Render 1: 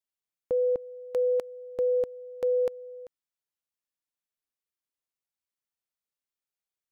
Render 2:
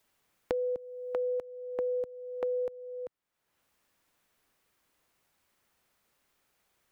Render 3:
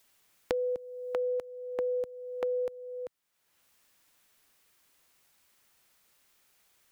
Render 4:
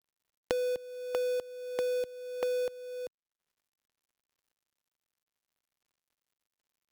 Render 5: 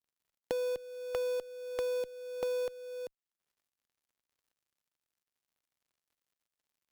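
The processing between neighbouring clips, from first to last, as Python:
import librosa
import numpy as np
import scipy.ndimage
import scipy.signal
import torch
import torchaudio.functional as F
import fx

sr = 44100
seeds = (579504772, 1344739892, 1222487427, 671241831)

y1 = fx.band_squash(x, sr, depth_pct=100)
y1 = y1 * 10.0 ** (-6.5 / 20.0)
y2 = fx.high_shelf(y1, sr, hz=2000.0, db=9.0)
y3 = fx.dead_time(y2, sr, dead_ms=0.16)
y4 = fx.diode_clip(y3, sr, knee_db=-20.0)
y4 = y4 * 10.0 ** (-1.5 / 20.0)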